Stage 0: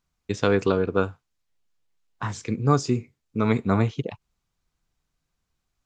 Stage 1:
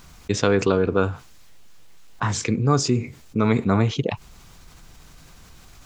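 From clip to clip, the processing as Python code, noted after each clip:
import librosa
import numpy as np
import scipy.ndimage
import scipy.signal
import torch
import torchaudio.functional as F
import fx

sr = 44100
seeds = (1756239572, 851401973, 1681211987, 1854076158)

y = fx.env_flatten(x, sr, amount_pct=50)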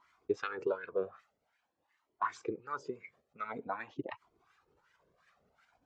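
y = fx.hpss(x, sr, part='harmonic', gain_db=-13)
y = fx.wah_lfo(y, sr, hz=2.7, low_hz=380.0, high_hz=1800.0, q=2.6)
y = fx.comb_cascade(y, sr, direction='rising', hz=0.48)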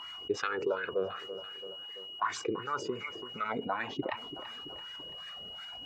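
y = x + 10.0 ** (-60.0 / 20.0) * np.sin(2.0 * np.pi * 2900.0 * np.arange(len(x)) / sr)
y = fx.echo_feedback(y, sr, ms=335, feedback_pct=46, wet_db=-21.5)
y = fx.env_flatten(y, sr, amount_pct=50)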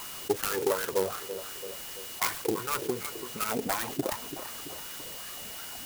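y = fx.self_delay(x, sr, depth_ms=0.31)
y = fx.clock_jitter(y, sr, seeds[0], jitter_ms=0.083)
y = F.gain(torch.from_numpy(y), 4.5).numpy()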